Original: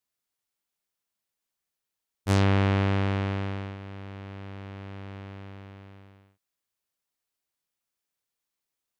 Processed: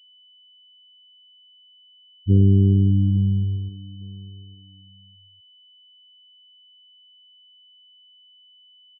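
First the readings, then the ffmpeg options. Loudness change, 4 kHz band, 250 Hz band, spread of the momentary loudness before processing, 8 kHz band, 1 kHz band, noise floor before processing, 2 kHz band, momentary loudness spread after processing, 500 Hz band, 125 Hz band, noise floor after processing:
+7.0 dB, 0.0 dB, +7.5 dB, 20 LU, can't be measured, below −40 dB, below −85 dBFS, below −40 dB, 22 LU, −1.5 dB, +8.5 dB, −54 dBFS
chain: -filter_complex "[0:a]adynamicequalizer=threshold=0.0178:dfrequency=140:dqfactor=1.4:tfrequency=140:tqfactor=1.4:attack=5:release=100:ratio=0.375:range=2.5:mode=boostabove:tftype=bell,acontrast=65,afftfilt=real='re*gte(hypot(re,im),0.398)':imag='im*gte(hypot(re,im),0.398)':win_size=1024:overlap=0.75,asplit=2[link_01][link_02];[link_02]adelay=857,lowpass=frequency=2000:poles=1,volume=-20dB,asplit=2[link_03][link_04];[link_04]adelay=857,lowpass=frequency=2000:poles=1,volume=0.26[link_05];[link_01][link_03][link_05]amix=inputs=3:normalize=0,aeval=exprs='val(0)+0.00282*sin(2*PI*3000*n/s)':channel_layout=same"

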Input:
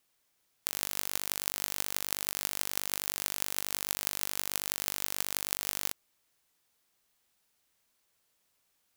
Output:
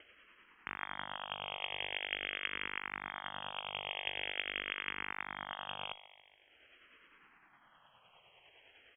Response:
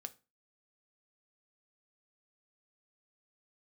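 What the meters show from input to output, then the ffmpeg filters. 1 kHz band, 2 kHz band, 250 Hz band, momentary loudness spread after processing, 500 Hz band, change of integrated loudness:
+1.5 dB, +2.5 dB, −6.0 dB, 6 LU, −2.0 dB, −7.5 dB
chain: -filter_complex "[0:a]acompressor=mode=upward:threshold=-44dB:ratio=2.5,afreqshift=290,aresample=16000,volume=24.5dB,asoftclip=hard,volume=-24.5dB,aresample=44100,tremolo=f=9.8:d=0.41,asplit=2[link_01][link_02];[link_02]aecho=0:1:141|282|423|564|705:0.141|0.0819|0.0475|0.0276|0.016[link_03];[link_01][link_03]amix=inputs=2:normalize=0,lowpass=frequency=3100:width_type=q:width=0.5098,lowpass=frequency=3100:width_type=q:width=0.6013,lowpass=frequency=3100:width_type=q:width=0.9,lowpass=frequency=3100:width_type=q:width=2.563,afreqshift=-3600,asplit=2[link_04][link_05];[link_05]afreqshift=-0.45[link_06];[link_04][link_06]amix=inputs=2:normalize=1,volume=8.5dB"

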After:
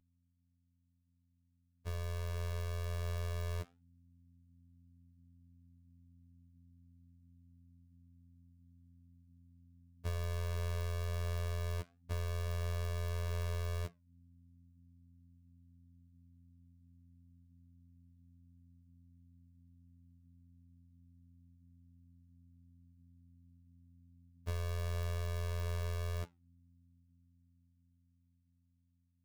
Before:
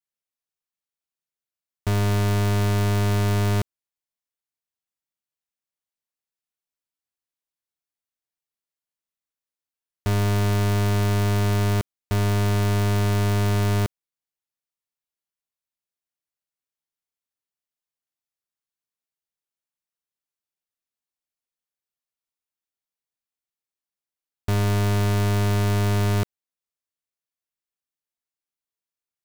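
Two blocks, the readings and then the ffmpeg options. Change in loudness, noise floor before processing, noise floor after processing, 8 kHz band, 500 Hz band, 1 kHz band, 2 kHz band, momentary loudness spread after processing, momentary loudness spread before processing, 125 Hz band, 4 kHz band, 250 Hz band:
−17.0 dB, below −85 dBFS, −76 dBFS, −17.5 dB, −17.5 dB, −19.5 dB, −17.5 dB, 6 LU, 5 LU, −17.0 dB, −17.0 dB, −27.0 dB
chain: -af "agate=range=-33dB:threshold=-10dB:ratio=3:detection=peak,aeval=exprs='val(0)+0.000126*(sin(2*PI*50*n/s)+sin(2*PI*2*50*n/s)/2+sin(2*PI*3*50*n/s)/3+sin(2*PI*4*50*n/s)/4+sin(2*PI*5*50*n/s)/5)':channel_layout=same,dynaudnorm=framelen=780:gausssize=9:maxgain=14dB,flanger=delay=7.1:depth=5.8:regen=-70:speed=0.73:shape=sinusoidal,acompressor=threshold=-48dB:ratio=6,afftfilt=real='hypot(re,im)*cos(PI*b)':imag='0':win_size=2048:overlap=0.75,volume=13dB"

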